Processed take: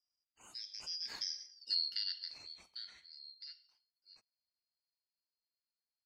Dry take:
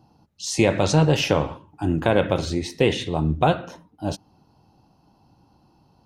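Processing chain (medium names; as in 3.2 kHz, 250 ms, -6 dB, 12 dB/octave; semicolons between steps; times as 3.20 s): four frequency bands reordered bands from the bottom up 4321; Doppler pass-by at 1.62 s, 24 m/s, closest 1.6 m; trim -5 dB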